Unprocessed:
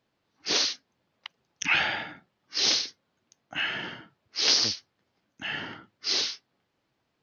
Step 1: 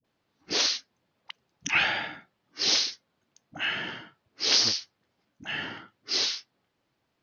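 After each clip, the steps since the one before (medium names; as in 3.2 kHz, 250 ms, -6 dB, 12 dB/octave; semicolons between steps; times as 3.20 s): phase dispersion highs, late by 45 ms, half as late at 480 Hz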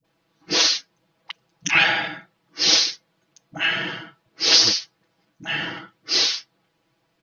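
comb 6.1 ms, depth 84%; trim +5 dB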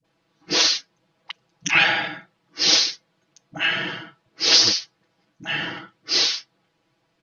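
low-pass 9.6 kHz 12 dB/octave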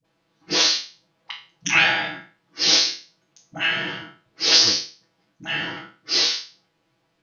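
spectral sustain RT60 0.37 s; trim -1.5 dB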